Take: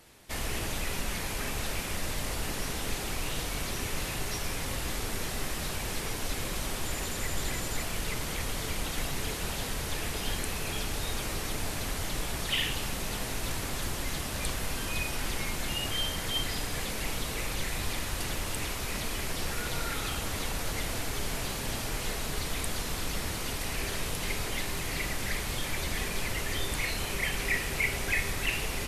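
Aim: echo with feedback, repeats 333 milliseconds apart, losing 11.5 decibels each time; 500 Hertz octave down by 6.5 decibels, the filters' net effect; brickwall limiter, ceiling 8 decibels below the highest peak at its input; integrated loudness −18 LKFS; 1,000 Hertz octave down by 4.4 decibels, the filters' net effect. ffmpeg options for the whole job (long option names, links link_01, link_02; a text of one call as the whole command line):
ffmpeg -i in.wav -af "equalizer=frequency=500:width_type=o:gain=-7.5,equalizer=frequency=1000:width_type=o:gain=-3.5,alimiter=limit=-23.5dB:level=0:latency=1,aecho=1:1:333|666|999:0.266|0.0718|0.0194,volume=16dB" out.wav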